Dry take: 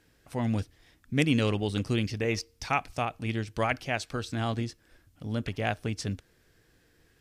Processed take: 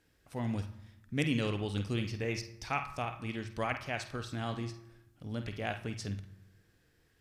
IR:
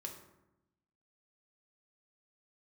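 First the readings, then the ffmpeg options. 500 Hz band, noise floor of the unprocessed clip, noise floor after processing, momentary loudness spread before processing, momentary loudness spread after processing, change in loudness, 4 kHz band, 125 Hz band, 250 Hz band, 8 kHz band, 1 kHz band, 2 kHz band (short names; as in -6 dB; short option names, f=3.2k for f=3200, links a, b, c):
-6.5 dB, -65 dBFS, -70 dBFS, 9 LU, 11 LU, -6.0 dB, -5.5 dB, -5.5 dB, -6.5 dB, -6.5 dB, -6.0 dB, -5.5 dB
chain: -filter_complex "[0:a]asplit=2[a][b];[b]equalizer=f=250:t=o:w=1:g=-10,equalizer=f=500:t=o:w=1:g=-10,equalizer=f=8k:t=o:w=1:g=-12[c];[1:a]atrim=start_sample=2205,adelay=49[d];[c][d]afir=irnorm=-1:irlink=0,volume=-1dB[e];[a][e]amix=inputs=2:normalize=0,volume=-6.5dB"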